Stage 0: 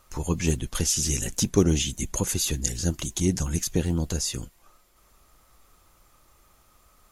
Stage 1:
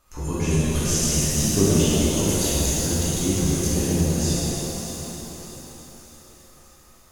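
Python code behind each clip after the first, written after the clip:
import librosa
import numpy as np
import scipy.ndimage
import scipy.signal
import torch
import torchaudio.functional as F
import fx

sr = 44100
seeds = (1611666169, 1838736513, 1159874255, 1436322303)

y = fx.echo_thinned(x, sr, ms=608, feedback_pct=49, hz=420.0, wet_db=-13)
y = fx.rev_shimmer(y, sr, seeds[0], rt60_s=3.6, semitones=7, shimmer_db=-8, drr_db=-9.0)
y = y * 10.0 ** (-6.0 / 20.0)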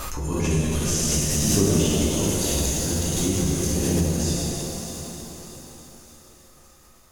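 y = fx.pre_swell(x, sr, db_per_s=22.0)
y = y * 10.0 ** (-2.0 / 20.0)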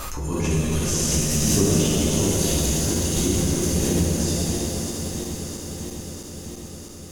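y = fx.reverse_delay_fb(x, sr, ms=328, feedback_pct=83, wet_db=-10.0)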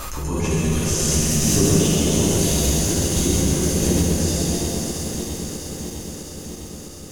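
y = x + 10.0 ** (-4.5 / 20.0) * np.pad(x, (int(133 * sr / 1000.0), 0))[:len(x)]
y = y * 10.0 ** (1.0 / 20.0)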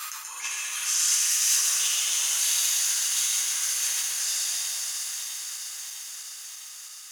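y = scipy.signal.sosfilt(scipy.signal.butter(4, 1300.0, 'highpass', fs=sr, output='sos'), x)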